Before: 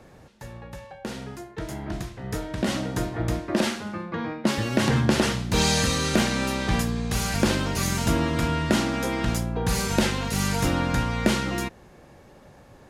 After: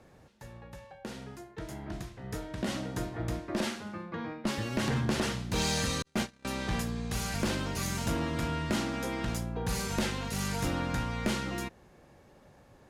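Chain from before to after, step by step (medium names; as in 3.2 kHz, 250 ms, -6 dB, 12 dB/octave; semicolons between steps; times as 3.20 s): 6.02–6.45 s: gate -20 dBFS, range -52 dB; one-sided clip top -18 dBFS; trim -7.5 dB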